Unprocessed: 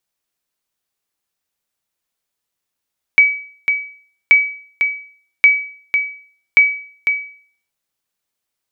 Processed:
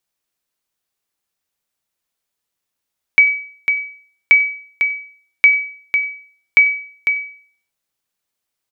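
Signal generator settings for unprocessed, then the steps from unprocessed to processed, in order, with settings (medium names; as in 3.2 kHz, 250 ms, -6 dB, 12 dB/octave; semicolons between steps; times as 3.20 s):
sonar ping 2.28 kHz, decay 0.50 s, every 1.13 s, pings 4, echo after 0.50 s, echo -7 dB -2 dBFS
delay 93 ms -22.5 dB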